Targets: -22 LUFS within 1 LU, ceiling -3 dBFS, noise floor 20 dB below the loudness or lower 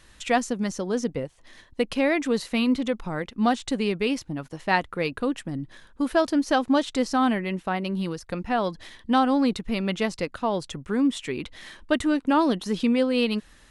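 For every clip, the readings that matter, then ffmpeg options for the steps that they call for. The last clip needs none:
loudness -25.5 LUFS; peak -7.5 dBFS; loudness target -22.0 LUFS
-> -af "volume=3.5dB"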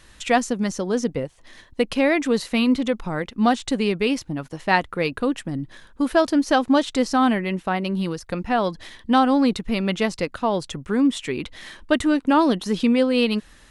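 loudness -22.0 LUFS; peak -4.0 dBFS; noise floor -51 dBFS

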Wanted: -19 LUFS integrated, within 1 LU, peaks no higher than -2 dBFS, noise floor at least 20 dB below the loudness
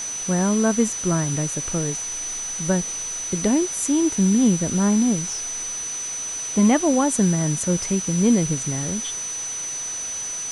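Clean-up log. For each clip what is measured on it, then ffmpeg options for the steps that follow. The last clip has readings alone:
steady tone 6000 Hz; tone level -27 dBFS; noise floor -30 dBFS; noise floor target -42 dBFS; loudness -21.5 LUFS; peak -7.0 dBFS; loudness target -19.0 LUFS
-> -af "bandreject=f=6k:w=30"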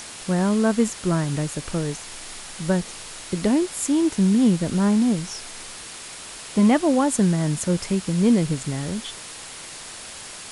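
steady tone none; noise floor -38 dBFS; noise floor target -42 dBFS
-> -af "afftdn=nr=6:nf=-38"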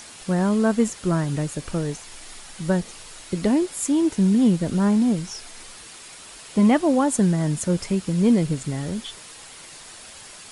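noise floor -43 dBFS; loudness -22.0 LUFS; peak -7.0 dBFS; loudness target -19.0 LUFS
-> -af "volume=3dB"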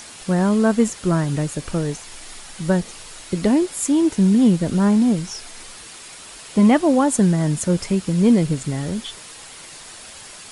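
loudness -19.0 LUFS; peak -4.0 dBFS; noise floor -40 dBFS

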